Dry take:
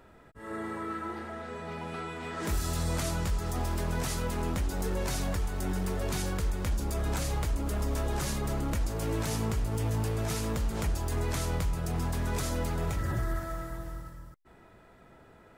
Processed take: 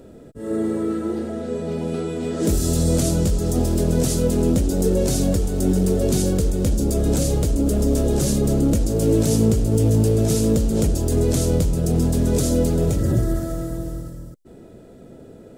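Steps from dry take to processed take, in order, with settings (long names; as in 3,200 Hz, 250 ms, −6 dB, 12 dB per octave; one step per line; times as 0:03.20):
octave-band graphic EQ 125/250/500/1,000/2,000/8,000 Hz +4/+8/+9/−12/−9/+5 dB
level +8 dB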